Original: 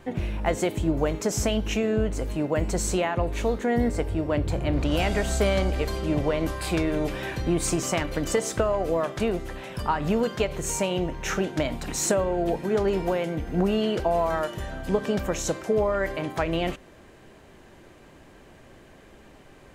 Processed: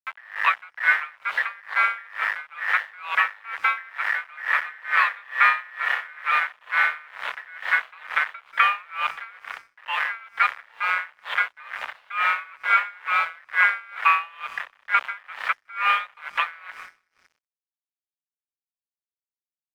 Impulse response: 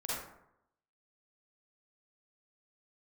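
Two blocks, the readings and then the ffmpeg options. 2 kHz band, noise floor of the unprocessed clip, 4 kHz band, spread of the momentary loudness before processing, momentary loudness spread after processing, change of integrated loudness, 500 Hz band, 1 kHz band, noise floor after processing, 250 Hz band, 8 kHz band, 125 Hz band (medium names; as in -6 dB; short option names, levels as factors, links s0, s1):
+13.5 dB, -51 dBFS, 0.0 dB, 5 LU, 12 LU, +2.5 dB, -22.5 dB, +7.0 dB, under -85 dBFS, under -40 dB, under -20 dB, under -40 dB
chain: -filter_complex "[0:a]aeval=exprs='val(0)*sin(2*PI*1600*n/s)':c=same,acrossover=split=670[s0][s1];[s0]acompressor=threshold=0.00224:ratio=6[s2];[s2][s1]amix=inputs=2:normalize=0,acrusher=bits=4:mix=0:aa=0.000001,equalizer=f=860:t=o:w=1.5:g=8,aecho=1:1:185|370|555|740|925:0.112|0.0617|0.0339|0.0187|0.0103,highpass=f=250:t=q:w=0.5412,highpass=f=250:t=q:w=1.307,lowpass=f=3200:t=q:w=0.5176,lowpass=f=3200:t=q:w=0.7071,lowpass=f=3200:t=q:w=1.932,afreqshift=220,aeval=exprs='sgn(val(0))*max(abs(val(0))-0.00266,0)':c=same,aeval=exprs='val(0)*pow(10,-27*(0.5-0.5*cos(2*PI*2.2*n/s))/20)':c=same,volume=1.88"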